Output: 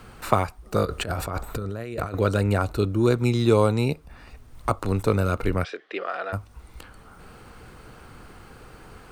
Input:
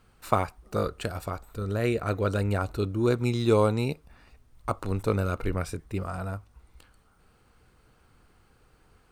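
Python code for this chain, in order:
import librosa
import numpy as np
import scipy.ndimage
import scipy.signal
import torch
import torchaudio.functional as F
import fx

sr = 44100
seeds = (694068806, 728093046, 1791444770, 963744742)

y = fx.over_compress(x, sr, threshold_db=-38.0, ratio=-1.0, at=(0.85, 2.14))
y = fx.cabinet(y, sr, low_hz=410.0, low_slope=24, high_hz=4400.0, hz=(940.0, 1800.0, 3200.0), db=(-9, 8, 8), at=(5.63, 6.32), fade=0.02)
y = fx.band_squash(y, sr, depth_pct=40)
y = y * librosa.db_to_amplitude(5.0)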